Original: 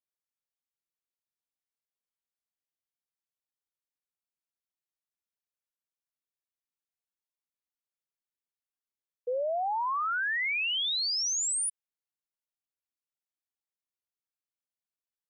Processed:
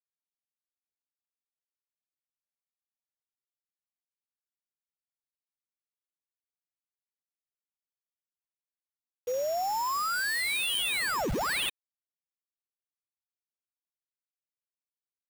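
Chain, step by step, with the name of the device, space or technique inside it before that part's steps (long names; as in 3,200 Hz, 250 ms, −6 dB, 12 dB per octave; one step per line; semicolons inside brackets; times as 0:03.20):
early 8-bit sampler (sample-rate reduction 6,200 Hz, jitter 0%; bit reduction 8 bits)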